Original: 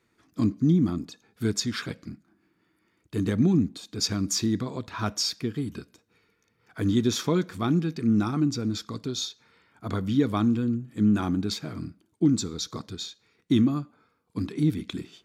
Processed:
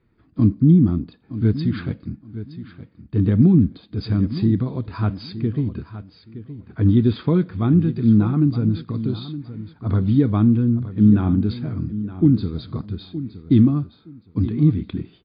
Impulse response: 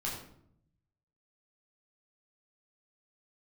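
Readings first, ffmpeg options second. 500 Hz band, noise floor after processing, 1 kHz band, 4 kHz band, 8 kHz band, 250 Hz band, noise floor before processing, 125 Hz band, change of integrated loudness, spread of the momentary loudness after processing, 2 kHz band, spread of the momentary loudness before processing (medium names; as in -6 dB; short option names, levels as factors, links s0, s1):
+3.5 dB, -56 dBFS, -0.5 dB, -8.5 dB, under -40 dB, +7.0 dB, -71 dBFS, +11.0 dB, +7.0 dB, 18 LU, -2.0 dB, 14 LU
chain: -af "aemphasis=mode=reproduction:type=riaa,aecho=1:1:918|1836:0.211|0.0444" -ar 11025 -c:a libmp3lame -b:a 32k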